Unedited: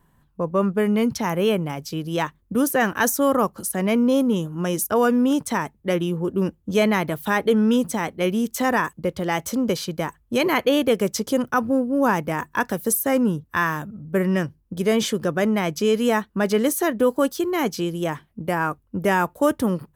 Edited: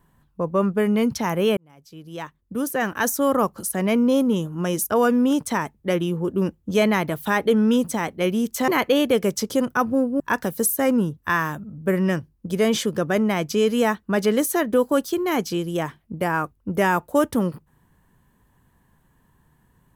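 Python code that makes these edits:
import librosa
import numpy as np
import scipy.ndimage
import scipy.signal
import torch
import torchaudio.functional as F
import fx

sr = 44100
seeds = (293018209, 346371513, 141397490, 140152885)

y = fx.edit(x, sr, fx.fade_in_span(start_s=1.57, length_s=1.89),
    fx.cut(start_s=8.68, length_s=1.77),
    fx.cut(start_s=11.97, length_s=0.5), tone=tone)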